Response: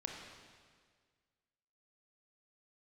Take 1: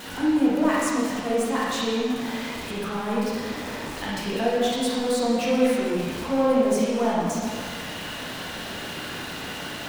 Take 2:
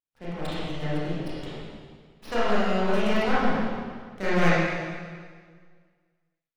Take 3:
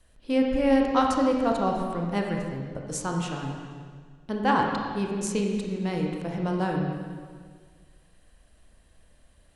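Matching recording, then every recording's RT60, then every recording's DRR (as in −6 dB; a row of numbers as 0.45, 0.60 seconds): 3; 1.7, 1.8, 1.8 seconds; −7.0, −11.0, 0.5 decibels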